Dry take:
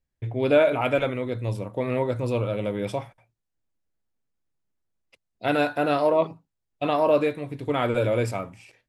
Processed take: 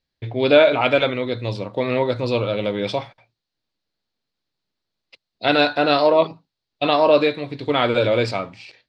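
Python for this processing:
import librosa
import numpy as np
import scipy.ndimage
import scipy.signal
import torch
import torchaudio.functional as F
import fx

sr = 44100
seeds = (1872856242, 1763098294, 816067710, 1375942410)

y = fx.lowpass_res(x, sr, hz=4300.0, q=4.3)
y = fx.low_shelf(y, sr, hz=100.0, db=-11.5)
y = F.gain(torch.from_numpy(y), 5.5).numpy()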